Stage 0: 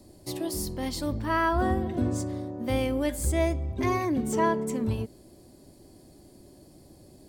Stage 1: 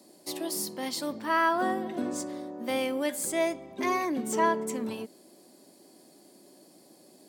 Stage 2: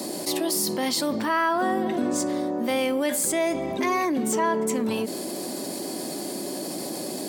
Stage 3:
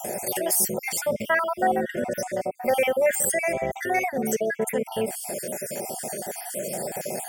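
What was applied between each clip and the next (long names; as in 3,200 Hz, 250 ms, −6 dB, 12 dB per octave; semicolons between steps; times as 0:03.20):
Chebyshev high-pass filter 190 Hz, order 3; low-shelf EQ 260 Hz −11 dB; level +2 dB
envelope flattener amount 70%
time-frequency cells dropped at random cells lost 47%; phaser with its sweep stopped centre 1,100 Hz, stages 6; level +7.5 dB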